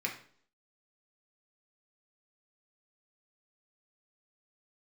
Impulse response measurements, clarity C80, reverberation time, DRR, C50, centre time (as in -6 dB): 13.0 dB, 0.55 s, -0.5 dB, 8.5 dB, 19 ms